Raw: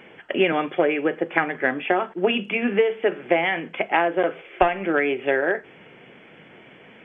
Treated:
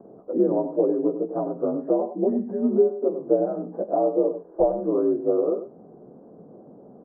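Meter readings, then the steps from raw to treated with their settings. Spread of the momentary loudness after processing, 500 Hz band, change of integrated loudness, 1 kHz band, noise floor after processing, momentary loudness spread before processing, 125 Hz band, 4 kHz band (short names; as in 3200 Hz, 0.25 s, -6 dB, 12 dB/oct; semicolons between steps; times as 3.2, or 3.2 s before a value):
6 LU, +0.5 dB, -1.5 dB, -8.5 dB, -48 dBFS, 4 LU, -0.5 dB, n/a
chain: inharmonic rescaling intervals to 84%; in parallel at -1 dB: compressor, threshold -33 dBFS, peak gain reduction 17 dB; on the sum: steep low-pass 770 Hz 36 dB/oct; echo 97 ms -10.5 dB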